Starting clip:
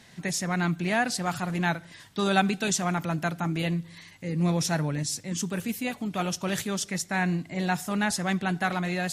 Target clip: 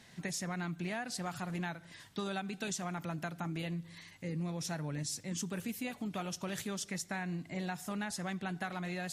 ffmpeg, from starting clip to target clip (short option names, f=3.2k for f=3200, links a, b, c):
-af "acompressor=threshold=-29dB:ratio=10,volume=-5dB"